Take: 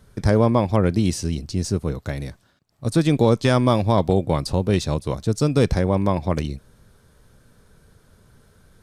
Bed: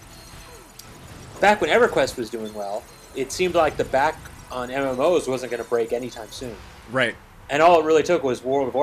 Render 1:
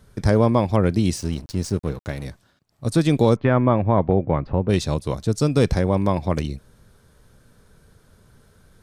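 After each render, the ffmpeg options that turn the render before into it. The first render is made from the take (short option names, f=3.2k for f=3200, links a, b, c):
-filter_complex "[0:a]asettb=1/sr,asplit=3[a][b][c];[a]atrim=end=1.164[d];[b]atrim=start=1.16:end=2.25,asetpts=PTS-STARTPTS,afade=t=in:d=0.004:c=qsin,afade=t=out:st=1.086:d=0.004:c=qsin,aeval=exprs='sgn(val(0))*max(abs(val(0))-0.0119,0)':c=same[e];[c]atrim=start=2.246[f];[d][e]acrossfade=d=0.004:c1=hsin:c2=qsin[g];[g][f]acrossfade=d=0.004:c1=qsin:c2=hsin,asplit=3[h][i][j];[h]afade=t=out:st=3.35:d=0.02[k];[i]lowpass=f=2.2k:w=0.5412,lowpass=f=2.2k:w=1.3066,afade=t=in:st=3.35:d=0.02,afade=t=out:st=4.68:d=0.02[l];[j]afade=t=in:st=4.68:d=0.02[m];[k][l][m]amix=inputs=3:normalize=0"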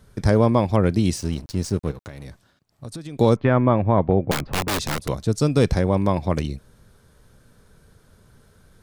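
-filter_complex "[0:a]asettb=1/sr,asplit=3[a][b][c];[a]atrim=end=1.914[d];[b]atrim=start=1.91:end=3.19,asetpts=PTS-STARTPTS,afade=t=in:d=0.004:c=qsin,afade=t=out:st=1.276:d=0.004:c=qsin,acompressor=threshold=-32dB:ratio=6:attack=3.2:release=140:knee=1:detection=peak[e];[c]atrim=start=3.186[f];[d][e]acrossfade=d=0.004:c1=hsin:c2=qsin[g];[g][f]acrossfade=d=0.004:c1=qsin:c2=hsin,asettb=1/sr,asplit=3[h][i][j];[h]atrim=end=4.314[k];[i]atrim=start=4.31:end=5.09,asetpts=PTS-STARTPTS,afade=t=in:d=0.004:c=qsin,afade=t=out:st=0.776:d=0.004:c=qsin,aeval=exprs='(mod(7.94*val(0)+1,2)-1)/7.94':c=same[l];[j]atrim=start=5.086[m];[k][l]acrossfade=d=0.004:c1=hsin:c2=qsin[n];[n][m]acrossfade=d=0.004:c1=qsin:c2=hsin"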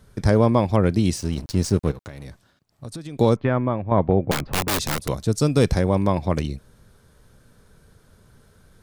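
-filter_complex "[0:a]asettb=1/sr,asplit=3[a][b][c];[a]atrim=end=4.514[d];[b]atrim=start=4.51:end=6.04,asetpts=PTS-STARTPTS,afade=t=in:d=0.004:c=qsin,afade=t=out:st=1.526:d=0.004:c=qsin,highshelf=f=7.9k:g=6[e];[c]atrim=start=6.036[f];[d][e]acrossfade=d=0.004:c1=hsin:c2=qsin[g];[g][f]acrossfade=d=0.004:c1=qsin:c2=hsin,asplit=4[h][i][j][k];[h]atrim=end=1.372[l];[i]atrim=start=1.368:end=1.922,asetpts=PTS-STARTPTS,volume=3.5dB[m];[j]atrim=start=1.918:end=3.91,asetpts=PTS-STARTPTS,afade=t=out:st=1.252:d=0.74:silence=0.334965[n];[k]atrim=start=3.91,asetpts=PTS-STARTPTS,afade=t=in:d=0.004:c=hsin:silence=0.334965[o];[l][m]acrossfade=d=0.004:c1=hsin:c2=hsin[p];[n][o]concat=n=2:v=0:a=1[q];[p][q]acrossfade=d=0.004:c1=hsin:c2=hsin"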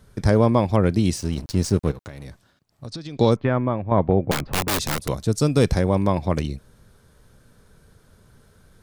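-filter_complex "[0:a]asettb=1/sr,asplit=3[a][b][c];[a]atrim=end=2.874[d];[b]atrim=start=2.87:end=3.31,asetpts=PTS-STARTPTS,afade=t=in:d=0.004:c=qsin,afade=t=out:st=0.436:d=0.004:c=qsin,lowpass=f=5k:t=q:w=2.4[e];[c]atrim=start=3.306[f];[d][e]acrossfade=d=0.004:c1=hsin:c2=qsin[g];[g][f]acrossfade=d=0.004:c1=qsin:c2=hsin"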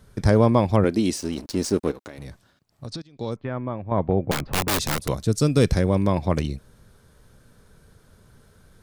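-filter_complex "[0:a]asettb=1/sr,asplit=3[a][b][c];[a]atrim=end=0.844[d];[b]atrim=start=0.84:end=2.18,asetpts=PTS-STARTPTS,afade=t=in:d=0.004:c=qsin,afade=t=out:st=1.336:d=0.004:c=qsin,lowshelf=f=190:t=q:w=1.5:g=-10[e];[c]atrim=start=2.176[f];[d][e]acrossfade=d=0.004:c1=hsin:c2=qsin[g];[g][f]acrossfade=d=0.004:c1=qsin:c2=hsin,asettb=1/sr,asplit=3[h][i][j];[h]atrim=end=5.224[k];[i]atrim=start=5.22:end=6.12,asetpts=PTS-STARTPTS,afade=t=in:d=0.004:c=qsin,afade=t=out:st=0.896:d=0.004:c=qsin,equalizer=f=840:t=o:w=0.74:g=-5.5[l];[j]atrim=start=6.116[m];[k][l]acrossfade=d=0.004:c1=hsin:c2=qsin[n];[n][m]acrossfade=d=0.004:c1=qsin:c2=hsin,asplit=2[o][p];[o]atrim=end=3.02,asetpts=PTS-STARTPTS,afade=t=out:st=3.016:d=0.004:c=hsin:silence=0.1[q];[p]atrim=start=3.02,asetpts=PTS-STARTPTS,afade=t=in:d=1.62:silence=0.1[r];[q][r]concat=n=2:v=0:a=1"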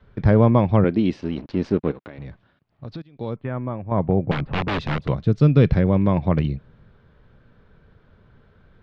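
-af "lowpass=f=3.2k:w=0.5412,lowpass=f=3.2k:w=1.3066,adynamicequalizer=threshold=0.0158:dfrequency=150:dqfactor=1.7:tfrequency=150:tqfactor=1.7:attack=5:release=100:ratio=0.375:range=3.5:mode=boostabove:tftype=bell"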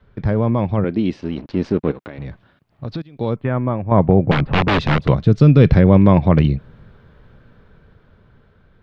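-af "alimiter=limit=-10dB:level=0:latency=1:release=15,dynaudnorm=f=570:g=7:m=10.5dB"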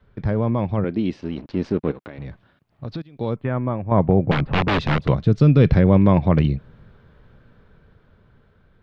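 -af "volume=-3.5dB"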